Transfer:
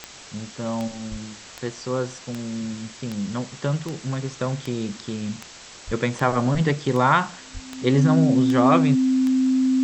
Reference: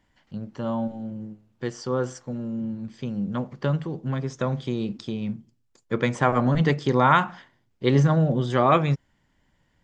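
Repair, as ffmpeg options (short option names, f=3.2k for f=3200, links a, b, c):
-filter_complex "[0:a]adeclick=t=4,bandreject=f=260:w=30,asplit=3[a][b][c];[a]afade=t=out:st=1.1:d=0.02[d];[b]highpass=f=140:w=0.5412,highpass=f=140:w=1.3066,afade=t=in:st=1.1:d=0.02,afade=t=out:st=1.22:d=0.02[e];[c]afade=t=in:st=1.22:d=0.02[f];[d][e][f]amix=inputs=3:normalize=0,asplit=3[g][h][i];[g]afade=t=out:st=5.86:d=0.02[j];[h]highpass=f=140:w=0.5412,highpass=f=140:w=1.3066,afade=t=in:st=5.86:d=0.02,afade=t=out:st=5.98:d=0.02[k];[i]afade=t=in:st=5.98:d=0.02[l];[j][k][l]amix=inputs=3:normalize=0,asplit=3[m][n][o];[m]afade=t=out:st=7.53:d=0.02[p];[n]highpass=f=140:w=0.5412,highpass=f=140:w=1.3066,afade=t=in:st=7.53:d=0.02,afade=t=out:st=7.65:d=0.02[q];[o]afade=t=in:st=7.65:d=0.02[r];[p][q][r]amix=inputs=3:normalize=0,afwtdn=0.011"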